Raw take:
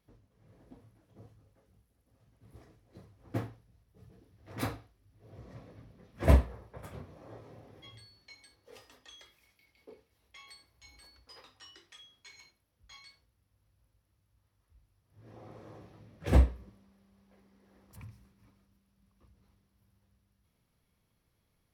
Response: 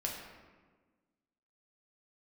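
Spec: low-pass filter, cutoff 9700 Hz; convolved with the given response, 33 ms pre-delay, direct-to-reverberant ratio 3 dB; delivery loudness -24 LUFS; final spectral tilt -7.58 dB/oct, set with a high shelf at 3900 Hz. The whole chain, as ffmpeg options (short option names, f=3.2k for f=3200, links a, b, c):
-filter_complex "[0:a]lowpass=9.7k,highshelf=f=3.9k:g=-4,asplit=2[a][b];[1:a]atrim=start_sample=2205,adelay=33[c];[b][c]afir=irnorm=-1:irlink=0,volume=-5.5dB[d];[a][d]amix=inputs=2:normalize=0,volume=5.5dB"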